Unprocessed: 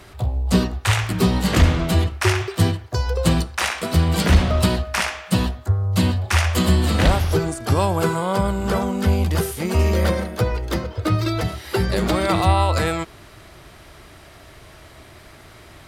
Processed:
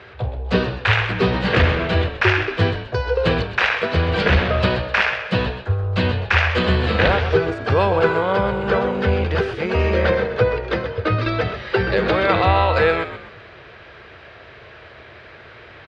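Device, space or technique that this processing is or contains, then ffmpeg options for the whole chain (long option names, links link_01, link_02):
frequency-shifting delay pedal into a guitar cabinet: -filter_complex "[0:a]asplit=5[link_01][link_02][link_03][link_04][link_05];[link_02]adelay=128,afreqshift=-59,volume=-10dB[link_06];[link_03]adelay=256,afreqshift=-118,volume=-18.9dB[link_07];[link_04]adelay=384,afreqshift=-177,volume=-27.7dB[link_08];[link_05]adelay=512,afreqshift=-236,volume=-36.6dB[link_09];[link_01][link_06][link_07][link_08][link_09]amix=inputs=5:normalize=0,highpass=84,equalizer=frequency=170:width_type=q:width=4:gain=-6,equalizer=frequency=280:width_type=q:width=4:gain=-8,equalizer=frequency=470:width_type=q:width=4:gain=9,equalizer=frequency=1600:width_type=q:width=4:gain=8,equalizer=frequency=2500:width_type=q:width=4:gain=5,lowpass=frequency=4000:width=0.5412,lowpass=frequency=4000:width=1.3066,volume=1dB"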